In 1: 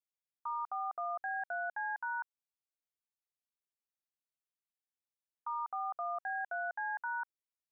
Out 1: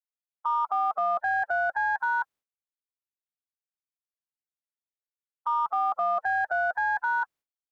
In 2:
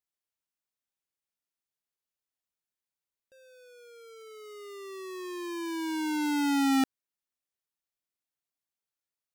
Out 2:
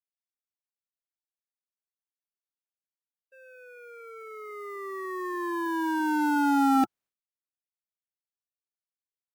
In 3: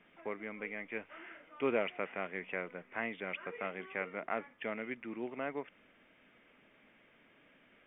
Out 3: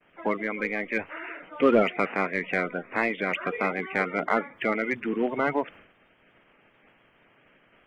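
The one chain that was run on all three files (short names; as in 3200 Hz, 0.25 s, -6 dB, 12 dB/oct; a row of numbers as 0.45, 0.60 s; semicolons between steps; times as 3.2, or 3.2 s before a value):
bin magnitudes rounded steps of 30 dB; in parallel at -3.5 dB: hard clip -34 dBFS; on the sum: high shelf 2900 Hz -8 dB; expander -55 dBFS; match loudness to -27 LUFS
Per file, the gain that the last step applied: +9.0, +2.5, +11.0 dB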